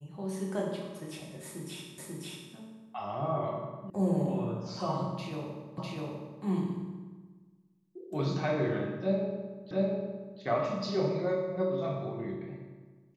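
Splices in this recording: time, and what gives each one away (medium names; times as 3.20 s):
1.98 s: repeat of the last 0.54 s
3.90 s: sound stops dead
5.78 s: repeat of the last 0.65 s
9.71 s: repeat of the last 0.7 s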